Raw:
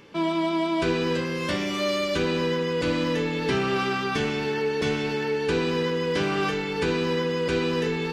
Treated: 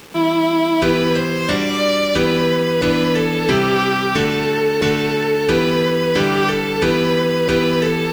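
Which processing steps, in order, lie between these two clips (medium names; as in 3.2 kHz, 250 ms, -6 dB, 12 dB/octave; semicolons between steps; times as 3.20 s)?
bit crusher 8-bit; trim +8.5 dB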